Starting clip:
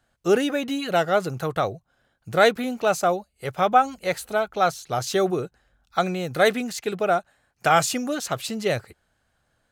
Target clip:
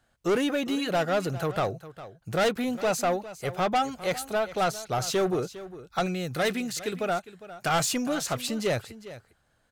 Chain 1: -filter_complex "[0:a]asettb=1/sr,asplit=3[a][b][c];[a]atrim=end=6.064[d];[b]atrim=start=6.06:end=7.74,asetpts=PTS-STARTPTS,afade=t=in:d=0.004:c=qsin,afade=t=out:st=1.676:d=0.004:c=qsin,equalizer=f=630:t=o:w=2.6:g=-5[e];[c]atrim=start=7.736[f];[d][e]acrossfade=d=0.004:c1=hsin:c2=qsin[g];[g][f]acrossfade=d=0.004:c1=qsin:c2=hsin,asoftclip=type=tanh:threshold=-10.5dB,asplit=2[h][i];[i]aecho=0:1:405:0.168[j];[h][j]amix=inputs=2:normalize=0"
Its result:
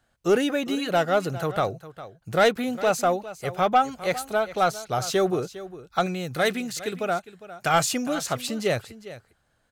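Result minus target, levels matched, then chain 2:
soft clip: distortion -10 dB
-filter_complex "[0:a]asettb=1/sr,asplit=3[a][b][c];[a]atrim=end=6.064[d];[b]atrim=start=6.06:end=7.74,asetpts=PTS-STARTPTS,afade=t=in:d=0.004:c=qsin,afade=t=out:st=1.676:d=0.004:c=qsin,equalizer=f=630:t=o:w=2.6:g=-5[e];[c]atrim=start=7.736[f];[d][e]acrossfade=d=0.004:c1=hsin:c2=qsin[g];[g][f]acrossfade=d=0.004:c1=qsin:c2=hsin,asoftclip=type=tanh:threshold=-20dB,asplit=2[h][i];[i]aecho=0:1:405:0.168[j];[h][j]amix=inputs=2:normalize=0"

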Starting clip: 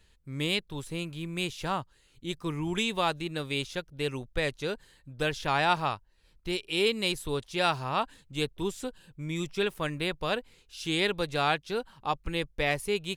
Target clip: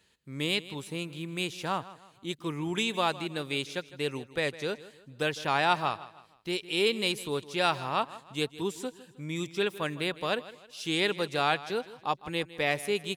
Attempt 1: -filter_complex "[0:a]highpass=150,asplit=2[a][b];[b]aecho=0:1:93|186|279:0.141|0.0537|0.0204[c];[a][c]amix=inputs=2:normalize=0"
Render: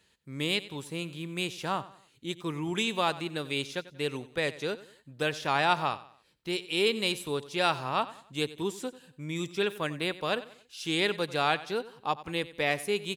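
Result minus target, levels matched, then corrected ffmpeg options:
echo 64 ms early
-filter_complex "[0:a]highpass=150,asplit=2[a][b];[b]aecho=0:1:157|314|471:0.141|0.0537|0.0204[c];[a][c]amix=inputs=2:normalize=0"

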